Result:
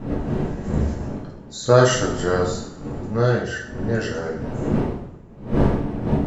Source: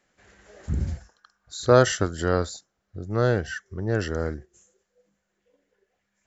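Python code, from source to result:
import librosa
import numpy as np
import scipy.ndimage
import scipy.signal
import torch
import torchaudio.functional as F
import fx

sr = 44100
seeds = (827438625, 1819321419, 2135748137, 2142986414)

y = fx.dmg_wind(x, sr, seeds[0], corner_hz=280.0, level_db=-28.0)
y = fx.rev_double_slope(y, sr, seeds[1], early_s=0.54, late_s=2.1, knee_db=-20, drr_db=-3.0)
y = F.gain(torch.from_numpy(y), -1.5).numpy()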